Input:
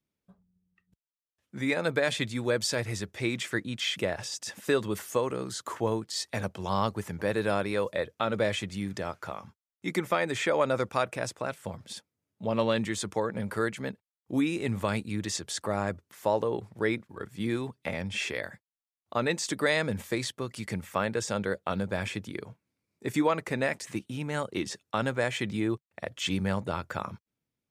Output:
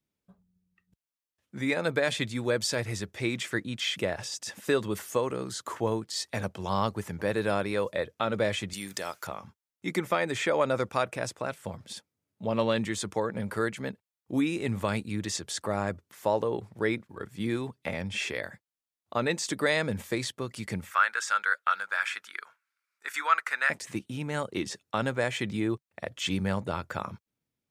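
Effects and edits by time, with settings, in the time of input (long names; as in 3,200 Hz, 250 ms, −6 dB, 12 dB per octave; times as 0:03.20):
0:08.73–0:09.27: RIAA equalisation recording
0:20.91–0:23.70: high-pass with resonance 1,400 Hz, resonance Q 4.8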